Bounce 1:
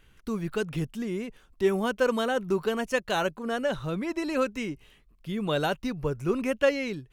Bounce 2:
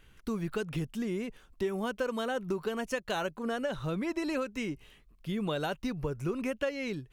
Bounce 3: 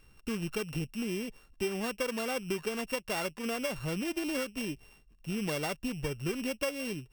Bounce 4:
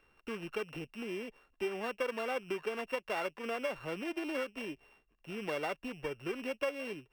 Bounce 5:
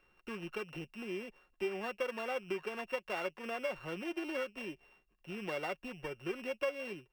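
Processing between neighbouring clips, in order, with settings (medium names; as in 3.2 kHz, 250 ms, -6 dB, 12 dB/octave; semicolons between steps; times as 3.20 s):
compression 6:1, threshold -29 dBFS, peak gain reduction 11 dB
sorted samples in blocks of 16 samples; trim -1 dB
three-band isolator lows -15 dB, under 310 Hz, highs -15 dB, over 3.1 kHz
comb 5.5 ms, depth 35%; trim -2.5 dB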